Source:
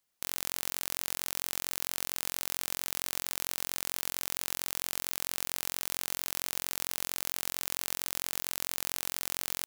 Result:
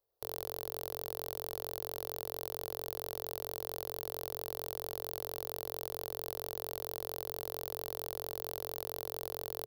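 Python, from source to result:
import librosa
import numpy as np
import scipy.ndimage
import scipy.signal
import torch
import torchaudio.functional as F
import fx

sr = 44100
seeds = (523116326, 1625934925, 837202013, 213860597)

y = fx.curve_eq(x, sr, hz=(120.0, 190.0, 440.0, 2300.0, 4300.0, 8100.0, 12000.0), db=(0, -27, 9, -22, -12, -26, -9))
y = y * 10.0 ** (3.5 / 20.0)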